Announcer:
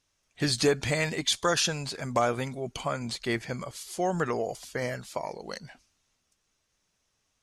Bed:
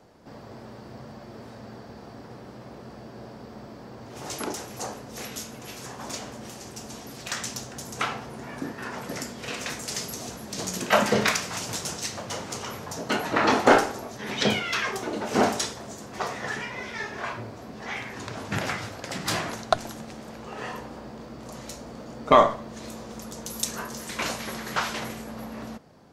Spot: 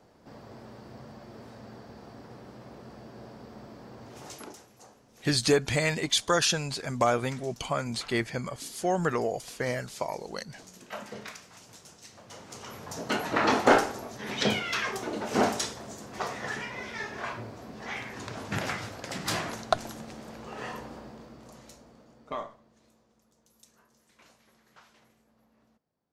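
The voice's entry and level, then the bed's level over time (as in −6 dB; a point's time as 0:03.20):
4.85 s, +1.0 dB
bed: 0:04.08 −4 dB
0:04.77 −19.5 dB
0:11.98 −19.5 dB
0:12.98 −3 dB
0:20.92 −3 dB
0:23.22 −30 dB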